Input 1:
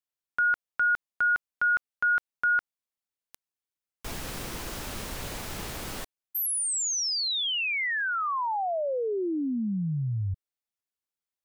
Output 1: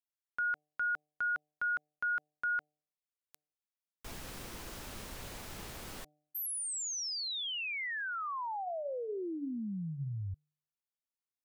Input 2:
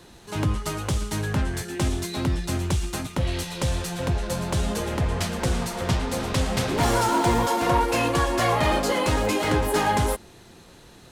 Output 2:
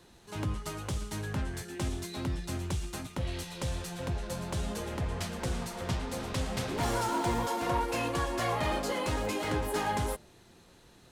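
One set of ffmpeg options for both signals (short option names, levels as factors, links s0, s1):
-af "bandreject=f=150.1:t=h:w=4,bandreject=f=300.2:t=h:w=4,bandreject=f=450.3:t=h:w=4,bandreject=f=600.4:t=h:w=4,bandreject=f=750.5:t=h:w=4,volume=0.355"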